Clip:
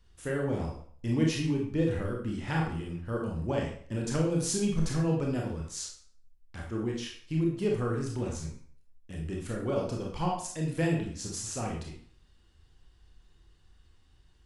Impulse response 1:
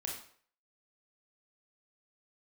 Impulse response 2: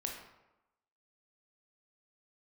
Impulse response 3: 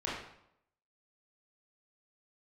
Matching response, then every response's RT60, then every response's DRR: 1; 0.55, 0.95, 0.75 seconds; −1.5, 0.5, −7.5 decibels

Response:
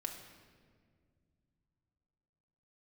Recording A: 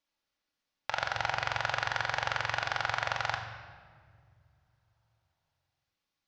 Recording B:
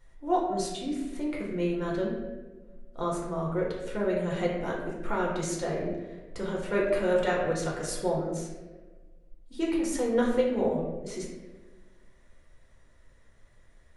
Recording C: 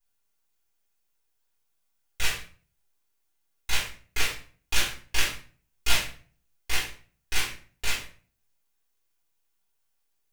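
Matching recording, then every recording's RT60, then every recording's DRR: A; 2.0, 1.3, 0.40 seconds; 2.0, −4.0, −8.5 decibels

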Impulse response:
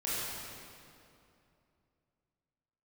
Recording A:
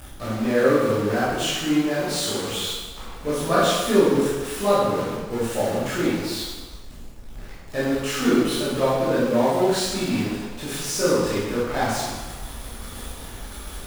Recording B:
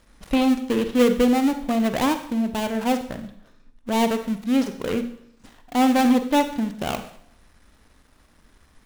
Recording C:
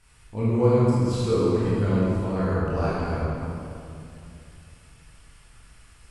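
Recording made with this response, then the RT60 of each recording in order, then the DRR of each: C; 1.3, 0.65, 2.7 seconds; −10.5, 9.0, −10.0 decibels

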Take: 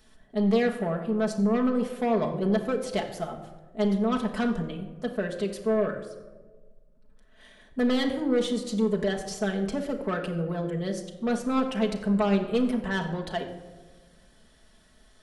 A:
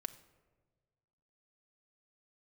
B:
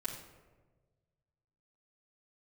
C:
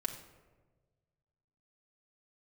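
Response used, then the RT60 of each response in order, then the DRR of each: C; 1.4, 1.4, 1.4 seconds; 8.5, −7.0, 1.0 decibels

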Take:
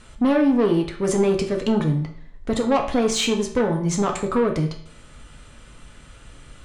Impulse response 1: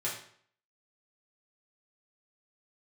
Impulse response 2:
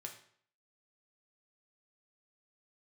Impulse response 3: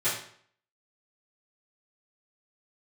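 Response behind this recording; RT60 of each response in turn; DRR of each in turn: 2; 0.55, 0.55, 0.55 seconds; −7.0, 1.5, −15.5 decibels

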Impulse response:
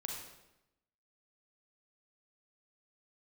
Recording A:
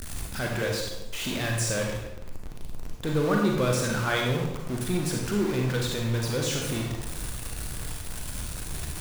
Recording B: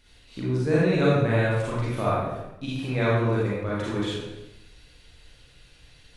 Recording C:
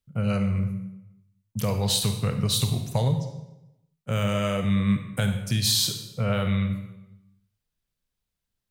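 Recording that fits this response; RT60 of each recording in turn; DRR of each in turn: A; 0.90, 0.90, 0.90 seconds; 0.0, −7.5, 6.0 decibels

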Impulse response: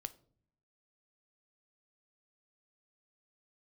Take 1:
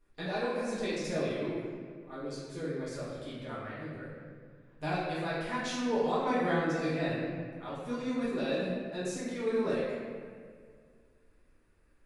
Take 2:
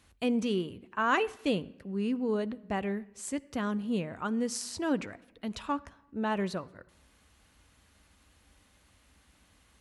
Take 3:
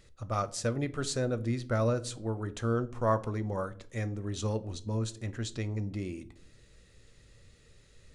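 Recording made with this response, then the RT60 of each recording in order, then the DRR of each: 3; 2.0 s, 1.0 s, non-exponential decay; −10.5, 15.0, 12.0 decibels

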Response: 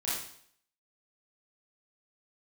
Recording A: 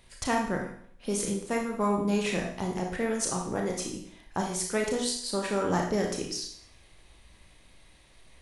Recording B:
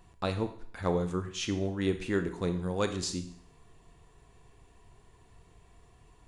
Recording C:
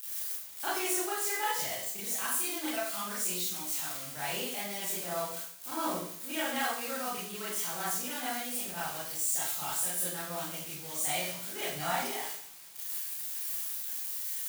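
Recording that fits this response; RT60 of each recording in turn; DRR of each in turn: C; 0.60, 0.60, 0.60 seconds; 0.5, 8.0, −9.5 decibels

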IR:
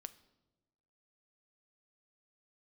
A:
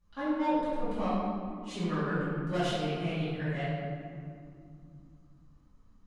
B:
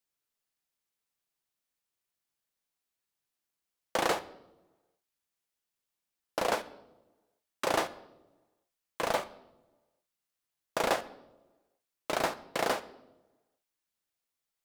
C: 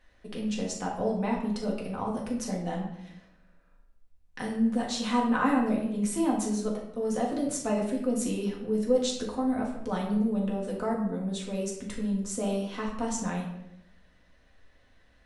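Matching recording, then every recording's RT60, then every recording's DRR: B; 2.6, 1.1, 0.80 seconds; −15.5, 12.5, −3.5 decibels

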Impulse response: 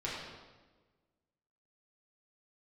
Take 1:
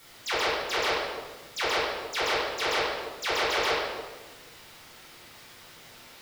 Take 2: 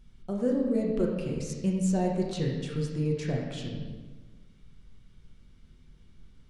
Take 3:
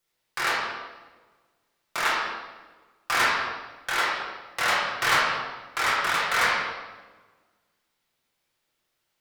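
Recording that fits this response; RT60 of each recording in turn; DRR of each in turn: 3; 1.3, 1.3, 1.3 seconds; −12.0, −2.0, −7.5 decibels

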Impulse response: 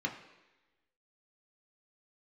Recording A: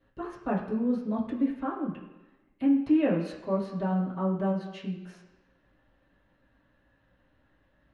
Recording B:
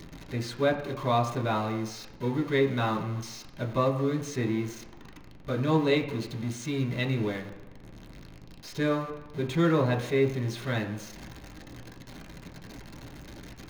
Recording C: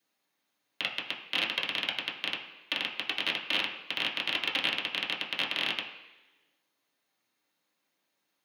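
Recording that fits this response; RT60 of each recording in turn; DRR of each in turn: B; 1.1, 1.1, 1.1 seconds; −9.5, 0.5, −3.5 decibels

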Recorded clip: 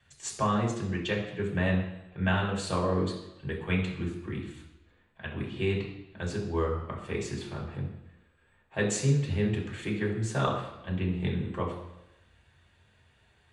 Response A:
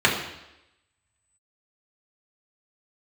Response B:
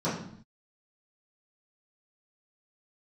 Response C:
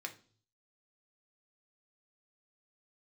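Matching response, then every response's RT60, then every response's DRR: A; 0.90, 0.60, 0.45 seconds; −4.0, −12.5, 3.5 decibels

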